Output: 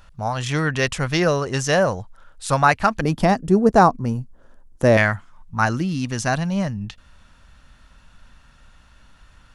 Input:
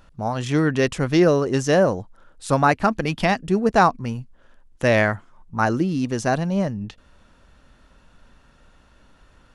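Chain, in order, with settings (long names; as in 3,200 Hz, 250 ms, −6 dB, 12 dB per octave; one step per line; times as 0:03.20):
parametric band 310 Hz −11.5 dB 1.7 octaves, from 0:03.01 2,700 Hz, from 0:04.97 400 Hz
level +4.5 dB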